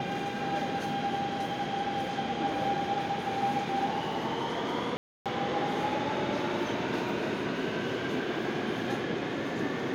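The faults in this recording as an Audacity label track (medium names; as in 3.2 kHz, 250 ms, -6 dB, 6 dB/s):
4.970000	5.260000	dropout 287 ms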